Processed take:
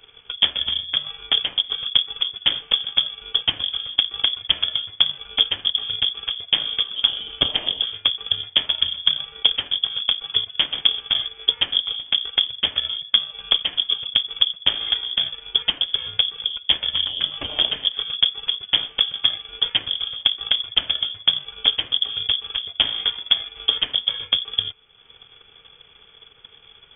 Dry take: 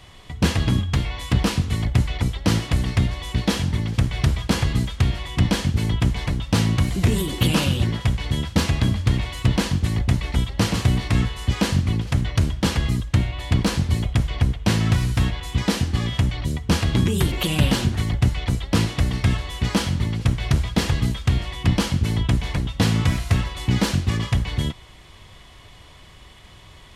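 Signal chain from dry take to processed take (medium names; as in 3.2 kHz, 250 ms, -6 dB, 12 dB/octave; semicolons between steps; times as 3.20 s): single-diode clipper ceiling -21.5 dBFS; transient shaper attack +10 dB, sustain -7 dB; frequency inversion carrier 3.4 kHz; trim -5.5 dB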